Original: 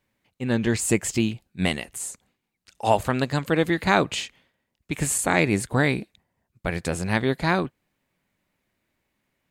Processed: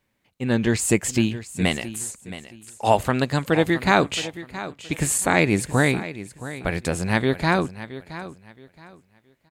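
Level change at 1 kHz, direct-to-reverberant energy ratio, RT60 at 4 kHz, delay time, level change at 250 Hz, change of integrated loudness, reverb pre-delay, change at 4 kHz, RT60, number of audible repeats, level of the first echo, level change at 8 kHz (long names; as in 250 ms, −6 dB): +2.0 dB, no reverb audible, no reverb audible, 671 ms, +2.0 dB, +2.0 dB, no reverb audible, +2.0 dB, no reverb audible, 2, −14.5 dB, +2.0 dB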